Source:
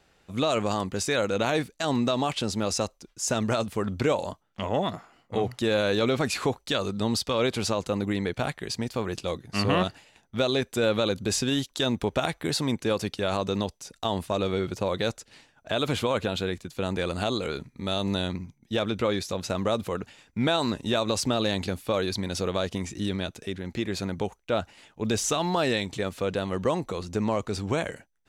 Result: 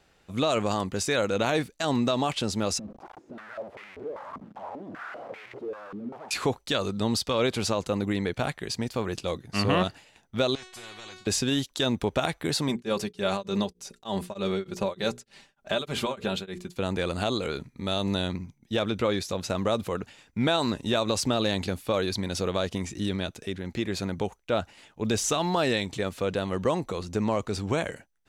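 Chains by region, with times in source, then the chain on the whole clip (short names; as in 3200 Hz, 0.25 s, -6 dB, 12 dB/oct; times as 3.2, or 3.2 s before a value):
2.79–6.31 infinite clipping + de-esser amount 55% + stepped band-pass 5.1 Hz 220–2200 Hz
10.55–11.27 LPF 4800 Hz + resonator 370 Hz, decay 0.28 s, mix 100% + spectral compressor 4:1
12.68–16.76 notches 60/120/180/240/300/360/420/480 Hz + comb 5.1 ms, depth 55% + beating tremolo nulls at 3.3 Hz
whole clip: dry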